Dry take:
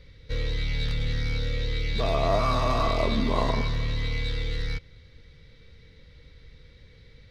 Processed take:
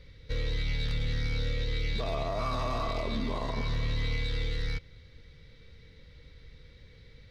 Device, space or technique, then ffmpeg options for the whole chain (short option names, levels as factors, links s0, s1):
stacked limiters: -af "alimiter=limit=0.188:level=0:latency=1:release=446,alimiter=limit=0.0891:level=0:latency=1:release=64,volume=0.841"